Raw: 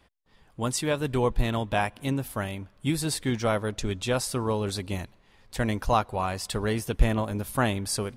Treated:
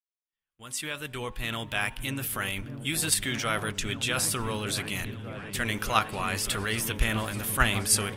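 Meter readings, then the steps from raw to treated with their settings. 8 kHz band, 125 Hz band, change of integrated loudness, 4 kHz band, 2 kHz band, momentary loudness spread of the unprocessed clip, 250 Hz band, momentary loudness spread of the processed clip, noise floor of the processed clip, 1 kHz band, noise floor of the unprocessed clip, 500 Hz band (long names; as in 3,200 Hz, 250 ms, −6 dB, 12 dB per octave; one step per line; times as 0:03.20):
+6.0 dB, −4.5 dB, −0.5 dB, +4.5 dB, +5.0 dB, 7 LU, −5.5 dB, 9 LU, below −85 dBFS, −2.0 dB, −61 dBFS, −7.5 dB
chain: fade in at the beginning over 2.40 s
first-order pre-emphasis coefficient 0.8
noise gate with hold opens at −54 dBFS
flat-topped bell 2,000 Hz +9.5 dB
transient designer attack −1 dB, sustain +5 dB
in parallel at +1.5 dB: output level in coarse steps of 15 dB
on the sum: hum removal 83.81 Hz, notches 13
on a send: echo whose low-pass opens from repeat to repeat 602 ms, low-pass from 200 Hz, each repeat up 1 octave, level −3 dB
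on the sum: level +3 dB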